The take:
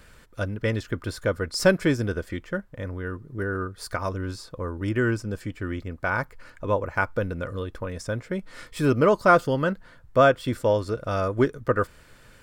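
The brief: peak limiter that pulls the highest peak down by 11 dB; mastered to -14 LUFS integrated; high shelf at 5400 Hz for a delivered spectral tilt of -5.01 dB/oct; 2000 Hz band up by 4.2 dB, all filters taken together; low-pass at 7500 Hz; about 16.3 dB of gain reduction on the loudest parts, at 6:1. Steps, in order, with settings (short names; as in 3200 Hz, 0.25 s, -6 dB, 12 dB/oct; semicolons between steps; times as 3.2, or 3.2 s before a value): LPF 7500 Hz; bell 2000 Hz +7 dB; high shelf 5400 Hz -5 dB; compressor 6:1, threshold -29 dBFS; gain +23 dB; limiter -2.5 dBFS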